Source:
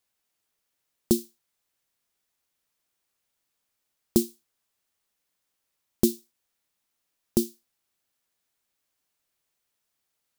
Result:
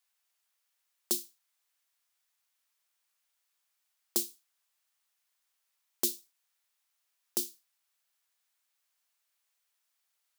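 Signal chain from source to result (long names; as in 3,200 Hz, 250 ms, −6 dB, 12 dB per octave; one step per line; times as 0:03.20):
high-pass filter 860 Hz 12 dB per octave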